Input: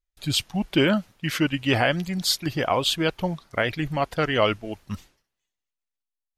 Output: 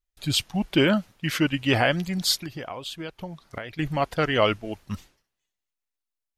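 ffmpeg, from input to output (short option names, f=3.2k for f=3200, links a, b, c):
-filter_complex "[0:a]asettb=1/sr,asplit=3[a][b][c];[a]atrim=end=2.414[d];[b]atrim=start=2.41:end=3.79,asetpts=PTS-STARTPTS,afade=t=in:d=0.004:c=qsin,afade=t=out:st=1.376:d=0.004:c=qsin,acompressor=threshold=-33dB:ratio=6[e];[c]atrim=start=3.786[f];[d][e]acrossfade=d=0.004:c1=hsin:c2=qsin[g];[g][f]acrossfade=d=0.004:c1=qsin:c2=hsin"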